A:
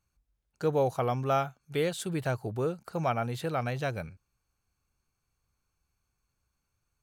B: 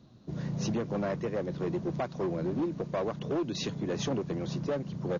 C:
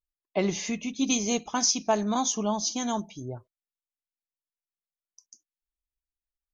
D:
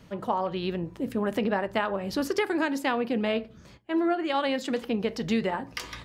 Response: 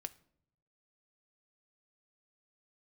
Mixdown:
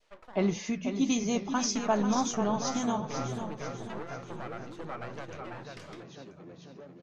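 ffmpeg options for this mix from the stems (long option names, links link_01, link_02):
-filter_complex "[0:a]highshelf=frequency=5500:gain=-10.5,adelay=1350,volume=-2.5dB,asplit=2[link_01][link_02];[link_02]volume=-9dB[link_03];[1:a]highpass=110,adelay=2100,volume=-13.5dB,asplit=2[link_04][link_05];[link_05]volume=-4dB[link_06];[2:a]lowshelf=frequency=370:gain=10,volume=-3dB,asplit=2[link_07][link_08];[link_08]volume=-8.5dB[link_09];[3:a]highpass=frequency=490:width=0.5412,highpass=frequency=490:width=1.3066,alimiter=limit=-22.5dB:level=0:latency=1:release=85,aeval=exprs='val(0)*pow(10,-32*(0.5-0.5*cos(2*PI*0.52*n/s))/20)':channel_layout=same,volume=-1.5dB[link_10];[link_01][link_10]amix=inputs=2:normalize=0,aeval=exprs='max(val(0),0)':channel_layout=same,alimiter=level_in=2.5dB:limit=-24dB:level=0:latency=1:release=128,volume=-2.5dB,volume=0dB[link_11];[link_03][link_06][link_09]amix=inputs=3:normalize=0,aecho=0:1:492|984|1476|1968|2460|2952:1|0.45|0.202|0.0911|0.041|0.0185[link_12];[link_04][link_07][link_11][link_12]amix=inputs=4:normalize=0,lowpass=7800,adynamicequalizer=threshold=0.00562:dfrequency=1300:dqfactor=1.1:tfrequency=1300:tqfactor=1.1:attack=5:release=100:ratio=0.375:range=3:mode=boostabove:tftype=bell,flanger=delay=6.8:depth=7.9:regen=-82:speed=1.7:shape=sinusoidal"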